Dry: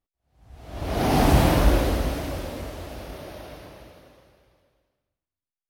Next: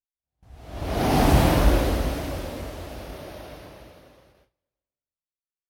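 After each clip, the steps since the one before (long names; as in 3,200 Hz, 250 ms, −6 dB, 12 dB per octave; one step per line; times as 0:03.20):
noise gate with hold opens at −47 dBFS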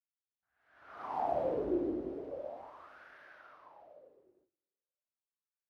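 fade in at the beginning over 1.87 s
LFO wah 0.39 Hz 340–1,600 Hz, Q 6.7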